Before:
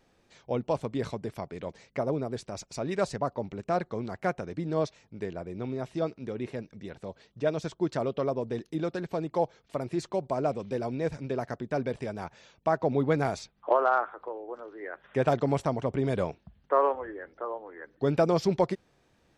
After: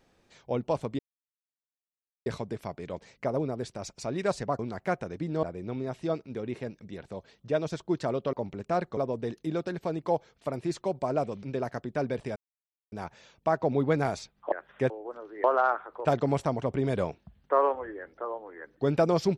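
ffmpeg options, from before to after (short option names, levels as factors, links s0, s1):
-filter_complex "[0:a]asplit=12[s0][s1][s2][s3][s4][s5][s6][s7][s8][s9][s10][s11];[s0]atrim=end=0.99,asetpts=PTS-STARTPTS,afade=t=out:st=0.986:d=0.004:c=hsin,apad=pad_dur=1.27[s12];[s1]atrim=start=0.99:end=3.322,asetpts=PTS-STARTPTS,afade=t=in:d=0.004:c=hsin[s13];[s2]atrim=start=3.958:end=4.802[s14];[s3]atrim=start=5.348:end=8.252[s15];[s4]atrim=start=3.318:end=3.962[s16];[s5]atrim=start=8.248:end=10.712[s17];[s6]atrim=start=11.188:end=12.12,asetpts=PTS-STARTPTS,afade=t=out:st=0.928:d=0.004:c=hsin,apad=pad_dur=0.56[s18];[s7]atrim=start=12.12:end=13.722,asetpts=PTS-STARTPTS,afade=t=in:d=0.004:c=hsin[s19];[s8]atrim=start=14.868:end=15.252[s20];[s9]atrim=start=14.328:end=14.872[s21];[s10]atrim=start=13.718:end=14.332[s22];[s11]atrim=start=15.248[s23];[s12][s13]concat=n=2:v=0:a=1[s24];[s24][s14]acrossfade=d=0.004:c1=hsin:c2=hsin[s25];[s25][s15]acrossfade=d=0.004:c1=hsin:c2=hsin[s26];[s26][s16]acrossfade=d=0.004:c1=hsin:c2=hsin[s27];[s27][s17]acrossfade=d=0.004:c1=hsin:c2=hsin[s28];[s18][s19]concat=n=2:v=0:a=1[s29];[s28][s29]acrossfade=d=0.004:c1=hsin:c2=hsin[s30];[s30][s20]acrossfade=d=0.004:c1=hsin:c2=hsin[s31];[s31][s21]acrossfade=d=0.004:c1=hsin:c2=hsin[s32];[s32][s22]acrossfade=d=0.004:c1=hsin:c2=hsin[s33];[s33][s23]acrossfade=d=0.004:c1=hsin:c2=hsin"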